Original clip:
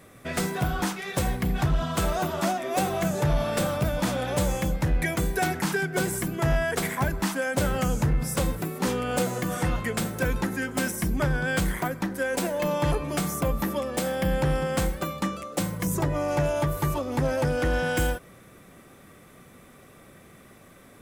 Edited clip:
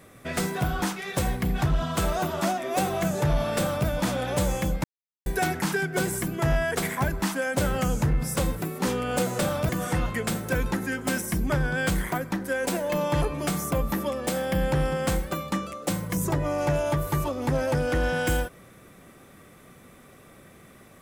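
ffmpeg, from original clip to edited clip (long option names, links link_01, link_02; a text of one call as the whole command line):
ffmpeg -i in.wav -filter_complex "[0:a]asplit=5[link_01][link_02][link_03][link_04][link_05];[link_01]atrim=end=4.84,asetpts=PTS-STARTPTS,afade=type=out:start_time=4.836:duration=0.004:curve=hsin[link_06];[link_02]atrim=start=4.84:end=5.26,asetpts=PTS-STARTPTS,volume=0[link_07];[link_03]atrim=start=5.26:end=9.392,asetpts=PTS-STARTPTS,afade=type=in:duration=0.004:curve=hsin[link_08];[link_04]atrim=start=3.568:end=3.872[link_09];[link_05]atrim=start=9.388[link_10];[link_06][link_07][link_08]concat=n=3:v=0:a=1[link_11];[link_11][link_09]acrossfade=duration=0.004:curve1=hsin:curve2=hsin[link_12];[link_12][link_10]acrossfade=duration=0.004:curve1=hsin:curve2=hsin" out.wav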